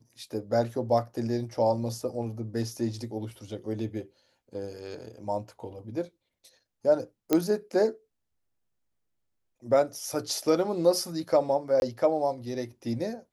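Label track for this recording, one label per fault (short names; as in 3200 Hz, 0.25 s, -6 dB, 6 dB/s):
7.330000	7.330000	pop -9 dBFS
11.800000	11.820000	gap 21 ms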